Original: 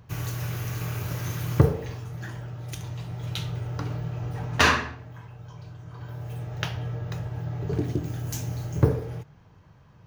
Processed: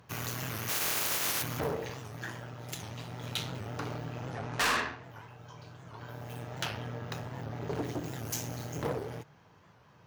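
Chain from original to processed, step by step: 0.68–1.41 s: spectral contrast reduction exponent 0.37; 4.31–5.04 s: Bessel low-pass 7.2 kHz; valve stage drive 28 dB, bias 0.65; high-pass 370 Hz 6 dB/octave; hard clipper -29 dBFS, distortion -20 dB; warped record 78 rpm, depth 160 cents; trim +4.5 dB

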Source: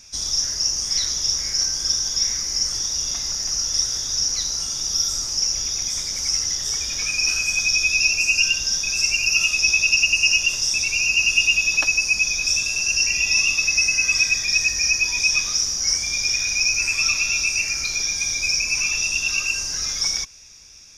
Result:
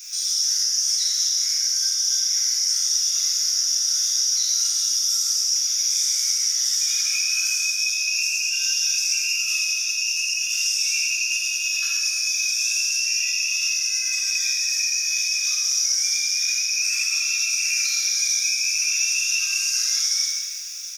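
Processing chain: crackle 410 per s -47 dBFS; elliptic high-pass 1.3 kHz, stop band 50 dB; doubling 43 ms -13.5 dB; compressor with a negative ratio -23 dBFS, ratio -0.5; treble shelf 4 kHz +9 dB; peak limiter -18.5 dBFS, peak gain reduction 14.5 dB; treble shelf 11 kHz +10.5 dB; gated-style reverb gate 500 ms falling, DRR -7 dB; flange 0.57 Hz, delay 2.8 ms, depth 2.1 ms, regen -62%

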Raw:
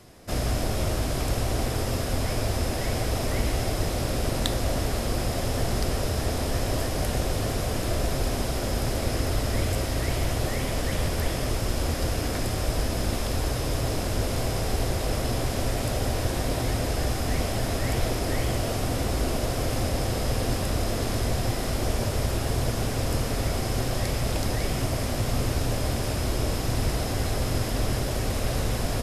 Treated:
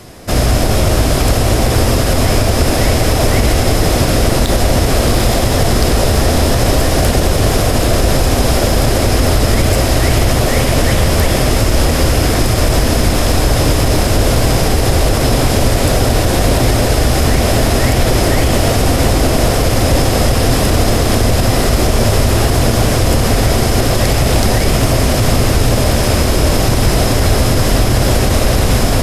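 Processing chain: tracing distortion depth 0.023 ms; echo that smears into a reverb 842 ms, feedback 73%, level -9 dB; loudness maximiser +16 dB; trim -1 dB

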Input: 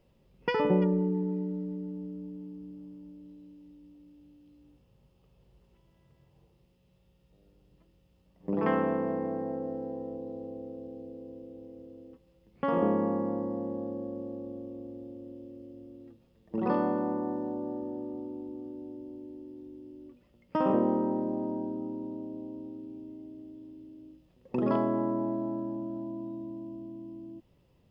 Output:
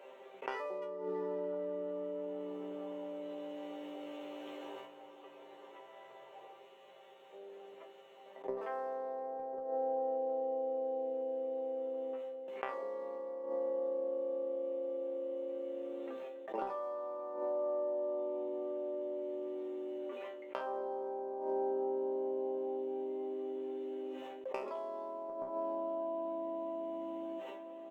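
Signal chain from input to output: local Wiener filter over 9 samples; gate with hold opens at -51 dBFS; high-pass 460 Hz 24 dB/octave; dynamic bell 1.6 kHz, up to -4 dB, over -45 dBFS, Q 1.1; inverted gate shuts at -30 dBFS, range -26 dB; chord resonator C3 fifth, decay 0.23 s; echo from a far wall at 180 m, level -28 dB; level flattener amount 70%; trim +14 dB

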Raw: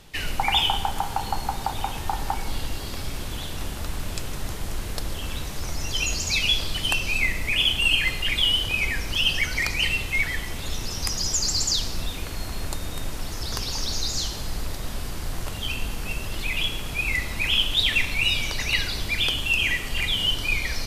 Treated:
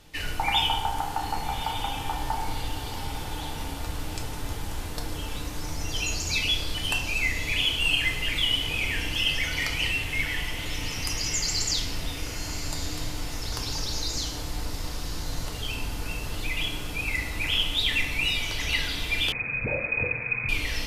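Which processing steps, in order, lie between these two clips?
echo that smears into a reverb 1197 ms, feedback 48%, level -10 dB; reverberation RT60 0.80 s, pre-delay 3 ms, DRR 1 dB; 19.32–20.49 s: frequency inversion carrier 2.5 kHz; trim -5 dB

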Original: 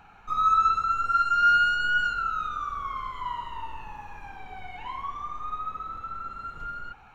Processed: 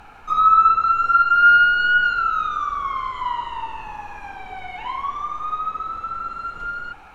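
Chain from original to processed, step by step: added noise brown -52 dBFS; tone controls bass -7 dB, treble -1 dB; low-pass that closes with the level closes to 2.6 kHz, closed at -20 dBFS; trim +8 dB

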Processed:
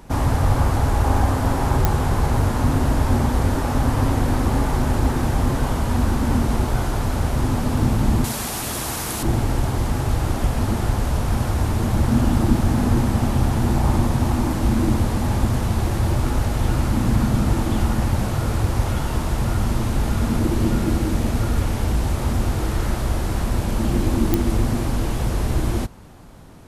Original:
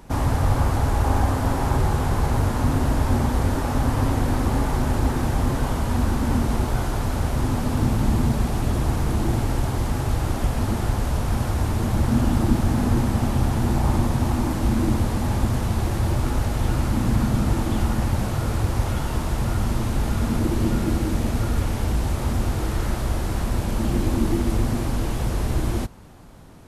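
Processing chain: 8.24–9.23 s: tilt EQ +3.5 dB/octave; clicks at 1.85/24.34 s, -5 dBFS; trim +2 dB

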